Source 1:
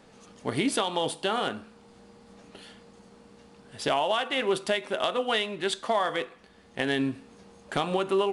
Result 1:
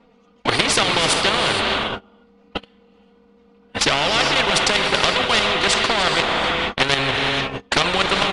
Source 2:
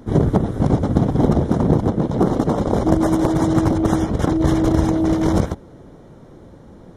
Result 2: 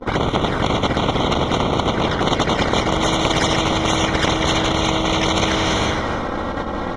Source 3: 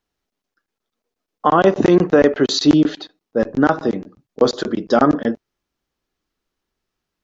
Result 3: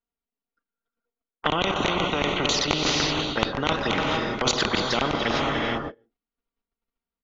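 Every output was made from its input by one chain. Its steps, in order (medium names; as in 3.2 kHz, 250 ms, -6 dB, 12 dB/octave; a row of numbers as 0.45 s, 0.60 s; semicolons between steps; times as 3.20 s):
delay 290 ms -17 dB; touch-sensitive flanger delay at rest 4.3 ms, full sweep at -13.5 dBFS; level held to a coarse grid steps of 10 dB; gated-style reverb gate 490 ms rising, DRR 9 dB; gate -49 dBFS, range -36 dB; low-pass 3 kHz 12 dB/octave; reverse; compression 4:1, threshold -30 dBFS; reverse; band-stop 1.7 kHz, Q 7.8; spectrum-flattening compressor 4:1; peak normalisation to -1.5 dBFS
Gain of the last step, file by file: +19.5 dB, +17.0 dB, +14.0 dB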